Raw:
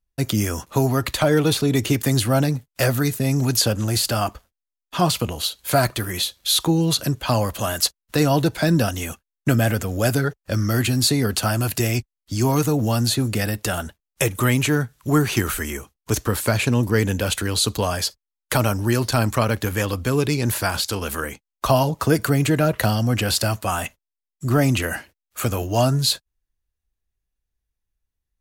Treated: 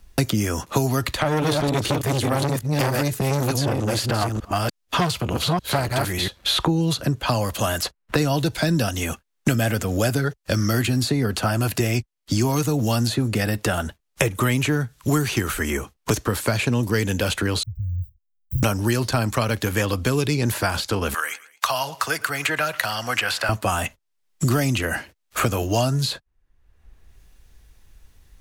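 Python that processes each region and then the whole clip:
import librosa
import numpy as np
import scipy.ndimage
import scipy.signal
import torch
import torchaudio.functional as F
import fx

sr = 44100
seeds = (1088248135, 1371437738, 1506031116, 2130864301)

y = fx.chain(x, sr, fx.reverse_delay(ms=298, wet_db=-3.5),
    fx.transformer_sat(knee_hz=1100.0), at=(1.12, 6.28))
y = fx.chain(y, sr, fx.block_float(bits=5),
    fx.cheby2_bandstop(low_hz=370.0, high_hz=9000.0, order=4, stop_db=70), at=(17.63, 18.63))
y = fx.chain(y, sr, fx.highpass(hz=1200.0, slope=12),
    fx.echo_feedback(ms=112, feedback_pct=25, wet_db=-23.5),
    fx.band_squash(depth_pct=40), at=(21.14, 23.49))
y = fx.high_shelf(y, sr, hz=11000.0, db=-8.0)
y = fx.band_squash(y, sr, depth_pct=100)
y = y * 10.0 ** (-1.0 / 20.0)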